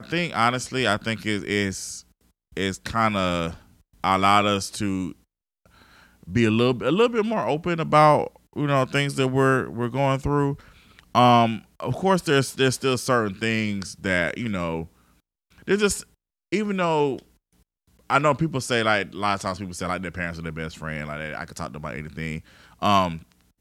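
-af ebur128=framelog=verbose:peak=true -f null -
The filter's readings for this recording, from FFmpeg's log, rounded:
Integrated loudness:
  I:         -23.3 LUFS
  Threshold: -34.1 LUFS
Loudness range:
  LRA:         5.6 LU
  Threshold: -44.0 LUFS
  LRA low:   -27.1 LUFS
  LRA high:  -21.5 LUFS
True peak:
  Peak:       -3.2 dBFS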